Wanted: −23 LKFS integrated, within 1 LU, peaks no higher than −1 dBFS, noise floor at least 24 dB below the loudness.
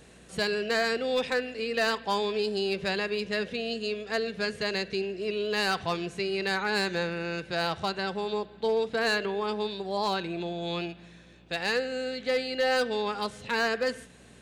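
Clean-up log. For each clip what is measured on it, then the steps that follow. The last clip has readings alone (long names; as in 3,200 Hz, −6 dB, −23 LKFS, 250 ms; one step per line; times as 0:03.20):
share of clipped samples 0.5%; peaks flattened at −20.0 dBFS; mains hum 60 Hz; hum harmonics up to 300 Hz; level of the hum −58 dBFS; integrated loudness −29.5 LKFS; sample peak −20.0 dBFS; target loudness −23.0 LKFS
→ clipped peaks rebuilt −20 dBFS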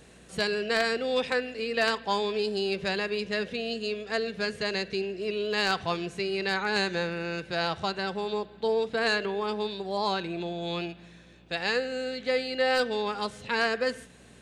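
share of clipped samples 0.0%; mains hum 60 Hz; hum harmonics up to 300 Hz; level of the hum −58 dBFS
→ hum removal 60 Hz, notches 5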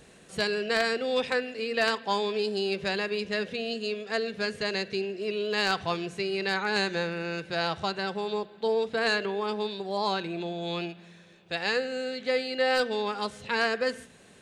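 mains hum none found; integrated loudness −29.0 LKFS; sample peak −11.0 dBFS; target loudness −23.0 LKFS
→ level +6 dB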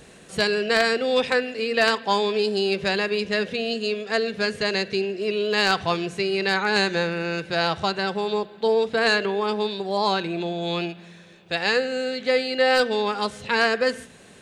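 integrated loudness −23.0 LKFS; sample peak −5.0 dBFS; background noise floor −48 dBFS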